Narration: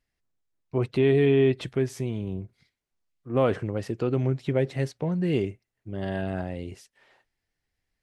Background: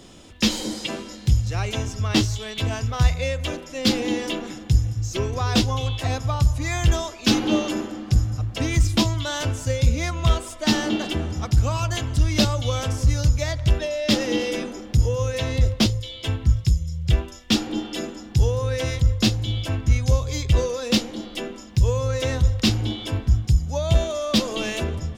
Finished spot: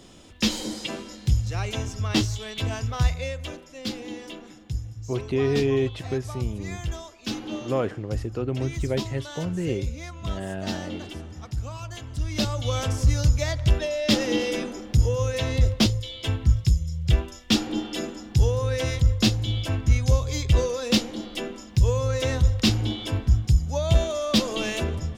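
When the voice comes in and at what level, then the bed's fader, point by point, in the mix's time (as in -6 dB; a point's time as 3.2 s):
4.35 s, -2.5 dB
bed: 2.97 s -3 dB
3.95 s -12 dB
12.01 s -12 dB
12.78 s -1 dB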